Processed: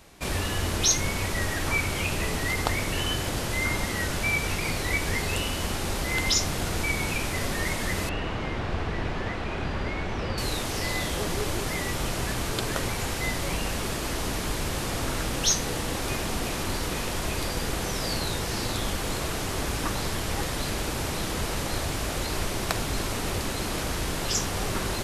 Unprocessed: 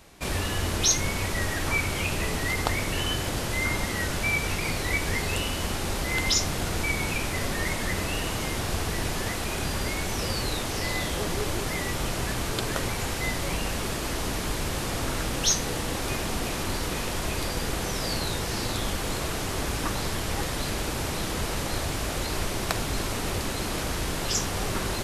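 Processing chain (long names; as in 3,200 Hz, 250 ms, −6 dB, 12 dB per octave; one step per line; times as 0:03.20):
0:08.09–0:10.38: low-pass filter 2,600 Hz 12 dB per octave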